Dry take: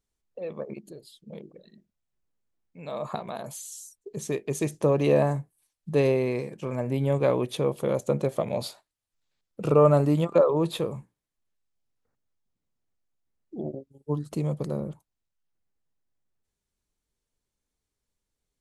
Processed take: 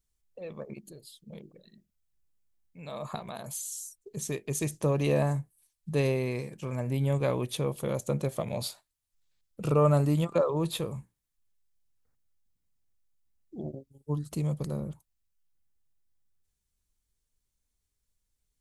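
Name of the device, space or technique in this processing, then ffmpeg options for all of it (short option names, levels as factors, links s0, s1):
smiley-face EQ: -af "lowshelf=f=110:g=8.5,equalizer=f=430:t=o:w=2.5:g=-5,highshelf=f=6300:g=8,volume=0.794"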